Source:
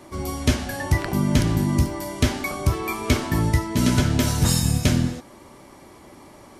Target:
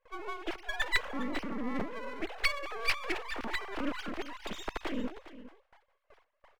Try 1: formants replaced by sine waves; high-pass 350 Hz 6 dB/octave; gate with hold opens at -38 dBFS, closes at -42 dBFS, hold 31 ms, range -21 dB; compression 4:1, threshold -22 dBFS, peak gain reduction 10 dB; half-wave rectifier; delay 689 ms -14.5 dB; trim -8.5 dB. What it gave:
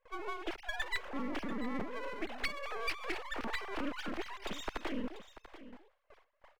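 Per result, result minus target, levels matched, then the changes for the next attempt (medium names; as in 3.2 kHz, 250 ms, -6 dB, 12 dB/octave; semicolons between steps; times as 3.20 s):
echo 281 ms late; compression: peak gain reduction +10 dB
change: delay 408 ms -14.5 dB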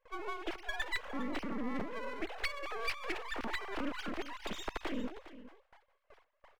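compression: peak gain reduction +10 dB
remove: compression 4:1, threshold -22 dBFS, peak gain reduction 10 dB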